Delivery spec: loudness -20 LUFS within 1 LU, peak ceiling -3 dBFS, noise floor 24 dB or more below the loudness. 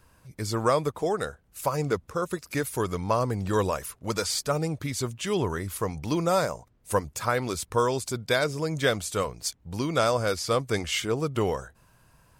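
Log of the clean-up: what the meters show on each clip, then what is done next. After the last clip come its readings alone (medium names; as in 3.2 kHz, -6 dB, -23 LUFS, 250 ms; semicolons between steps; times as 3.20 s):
loudness -28.0 LUFS; peak level -9.5 dBFS; loudness target -20.0 LUFS
-> trim +8 dB; peak limiter -3 dBFS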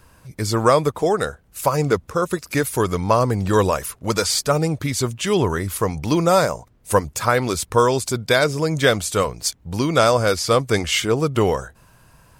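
loudness -20.0 LUFS; peak level -3.0 dBFS; noise floor -54 dBFS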